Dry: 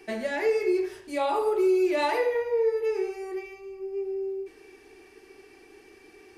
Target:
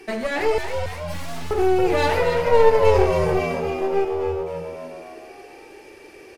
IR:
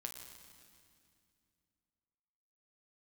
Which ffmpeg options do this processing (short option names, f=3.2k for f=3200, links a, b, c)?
-filter_complex "[0:a]asettb=1/sr,asplit=3[a][b][c];[a]atrim=end=0.584[d];[b]atrim=start=0.58:end=1.51,asetpts=PTS-STARTPTS,afade=t=in:d=0.004:c=qsin,afade=t=out:st=0.926:d=0.004:c=qsin,aeval=exprs='abs(val(0))':c=same[e];[c]atrim=start=1.506[f];[d][e]acrossfade=d=0.004:c1=hsin:c2=qsin[g];[g][f]acrossfade=d=0.004:c1=qsin:c2=hsin,asettb=1/sr,asplit=3[h][i][j];[h]atrim=end=2.464[k];[i]atrim=start=2.46:end=4.05,asetpts=PTS-STARTPTS,afade=t=in:d=0.004:c=qsin,afade=t=out:st=1.586:d=0.004:c=qsin,acontrast=73[l];[j]atrim=start=4.046[m];[k][l]acrossfade=d=0.004:c1=hsin:c2=qsin[n];[n][m]acrossfade=d=0.004:c1=qsin:c2=hsin,aeval=exprs='clip(val(0),-1,0.0188)':c=same,asplit=7[o][p][q][r][s][t][u];[p]adelay=276,afreqshift=83,volume=-7dB[v];[q]adelay=552,afreqshift=166,volume=-12.5dB[w];[r]adelay=828,afreqshift=249,volume=-18dB[x];[s]adelay=1104,afreqshift=332,volume=-23.5dB[y];[t]adelay=1380,afreqshift=415,volume=-29.1dB[z];[u]adelay=1656,afreqshift=498,volume=-34.6dB[aa];[o][v][w][x][y][z][aa]amix=inputs=7:normalize=0,volume=7dB" -ar 44100 -c:a aac -b:a 96k